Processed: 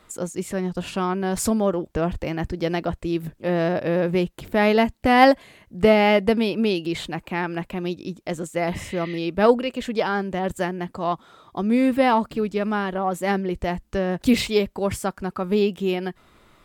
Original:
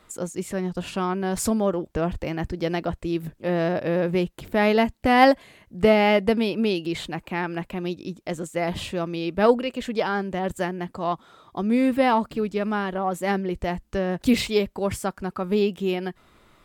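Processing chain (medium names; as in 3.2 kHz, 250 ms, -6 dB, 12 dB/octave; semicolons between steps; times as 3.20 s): spectral replace 8.75–9.16 s, 1.8–5 kHz before; trim +1.5 dB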